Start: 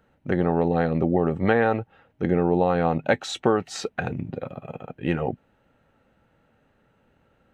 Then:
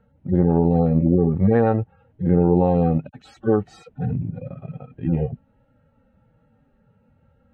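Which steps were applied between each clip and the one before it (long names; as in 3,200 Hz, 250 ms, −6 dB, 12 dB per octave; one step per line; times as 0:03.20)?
harmonic-percussive split with one part muted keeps harmonic
spectral tilt −3 dB per octave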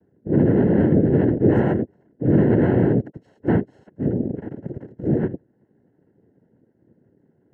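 cochlear-implant simulation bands 3
moving average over 37 samples
level +2.5 dB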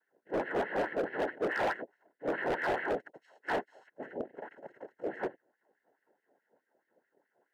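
auto-filter high-pass sine 4.7 Hz 610–2,000 Hz
gain into a clipping stage and back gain 24 dB
level −3 dB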